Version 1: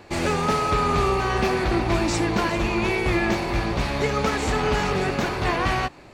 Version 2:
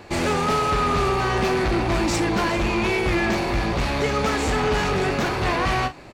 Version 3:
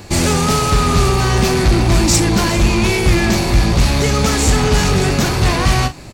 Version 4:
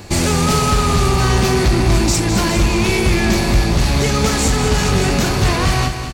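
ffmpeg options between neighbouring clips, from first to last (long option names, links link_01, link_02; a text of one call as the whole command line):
ffmpeg -i in.wav -filter_complex "[0:a]asplit=2[link_01][link_02];[link_02]adelay=40,volume=-12.5dB[link_03];[link_01][link_03]amix=inputs=2:normalize=0,asoftclip=type=tanh:threshold=-19.5dB,volume=3.5dB" out.wav
ffmpeg -i in.wav -af "bass=frequency=250:gain=10,treble=frequency=4000:gain=14,volume=3dB" out.wav
ffmpeg -i in.wav -filter_complex "[0:a]alimiter=limit=-6.5dB:level=0:latency=1:release=384,asplit=2[link_01][link_02];[link_02]aecho=0:1:206|412|618|824|1030|1236:0.355|0.177|0.0887|0.0444|0.0222|0.0111[link_03];[link_01][link_03]amix=inputs=2:normalize=0" out.wav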